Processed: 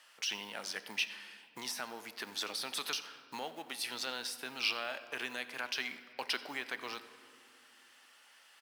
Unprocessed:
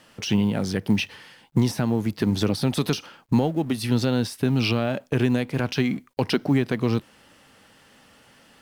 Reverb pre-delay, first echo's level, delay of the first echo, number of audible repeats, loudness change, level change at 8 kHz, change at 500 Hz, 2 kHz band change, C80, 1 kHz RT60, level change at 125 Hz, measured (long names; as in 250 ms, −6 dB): 3 ms, −21.0 dB, 89 ms, 1, −14.0 dB, −5.0 dB, −19.5 dB, −5.0 dB, 13.5 dB, 2.3 s, below −40 dB